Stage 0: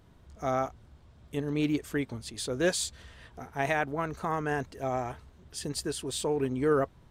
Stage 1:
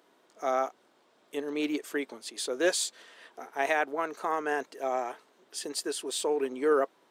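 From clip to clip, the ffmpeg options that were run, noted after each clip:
ffmpeg -i in.wav -af "highpass=frequency=320:width=0.5412,highpass=frequency=320:width=1.3066,volume=1.5dB" out.wav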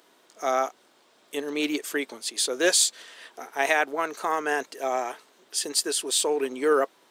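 ffmpeg -i in.wav -af "highshelf=frequency=2200:gain=8.5,volume=2.5dB" out.wav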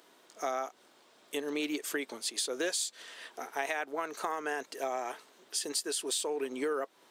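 ffmpeg -i in.wav -af "acompressor=threshold=-29dB:ratio=6,volume=-1.5dB" out.wav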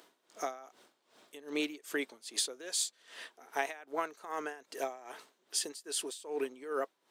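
ffmpeg -i in.wav -af "aeval=exprs='val(0)*pow(10,-18*(0.5-0.5*cos(2*PI*2.5*n/s))/20)':channel_layout=same,volume=1.5dB" out.wav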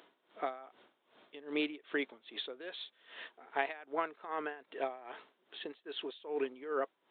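ffmpeg -i in.wav -af "aresample=8000,aresample=44100" out.wav

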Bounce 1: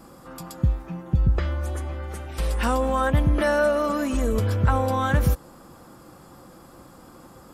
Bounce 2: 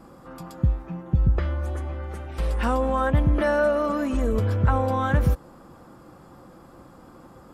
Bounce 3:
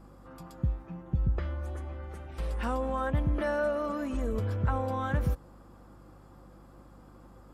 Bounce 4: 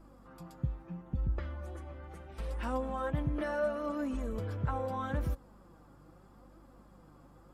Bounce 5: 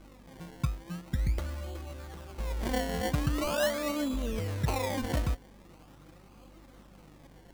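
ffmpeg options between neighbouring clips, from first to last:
ffmpeg -i in.wav -af "highshelf=frequency=3500:gain=-10.5" out.wav
ffmpeg -i in.wav -af "aeval=exprs='val(0)+0.00501*(sin(2*PI*50*n/s)+sin(2*PI*2*50*n/s)/2+sin(2*PI*3*50*n/s)/3+sin(2*PI*4*50*n/s)/4+sin(2*PI*5*50*n/s)/5)':channel_layout=same,volume=-8dB" out.wav
ffmpeg -i in.wav -af "flanger=delay=3:depth=4.3:regen=46:speed=0.76:shape=triangular" out.wav
ffmpeg -i in.wav -af "acrusher=samples=24:mix=1:aa=0.000001:lfo=1:lforange=24:lforate=0.43,volume=3.5dB" out.wav

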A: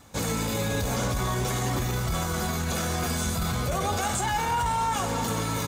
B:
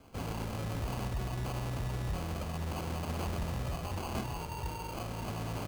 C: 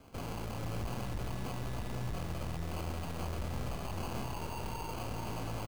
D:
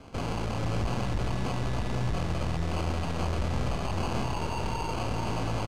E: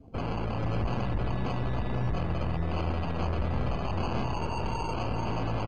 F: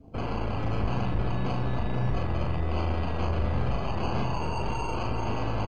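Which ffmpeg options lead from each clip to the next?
ffmpeg -i in.wav -filter_complex "[0:a]acrossover=split=150|3000[link_01][link_02][link_03];[link_02]acompressor=threshold=-43dB:ratio=3[link_04];[link_01][link_04][link_03]amix=inputs=3:normalize=0,acrusher=samples=24:mix=1:aa=0.000001,volume=-5dB" out.wav
ffmpeg -i in.wav -filter_complex "[0:a]aeval=exprs='(tanh(100*val(0)+0.65)-tanh(0.65))/100':channel_layout=same,asplit=2[link_01][link_02];[link_02]aecho=0:1:478:0.501[link_03];[link_01][link_03]amix=inputs=2:normalize=0,volume=3.5dB" out.wav
ffmpeg -i in.wav -af "lowpass=7000,volume=8.5dB" out.wav
ffmpeg -i in.wav -af "afftdn=noise_reduction=23:noise_floor=-44" out.wav
ffmpeg -i in.wav -filter_complex "[0:a]asplit=2[link_01][link_02];[link_02]adelay=39,volume=-4dB[link_03];[link_01][link_03]amix=inputs=2:normalize=0" out.wav

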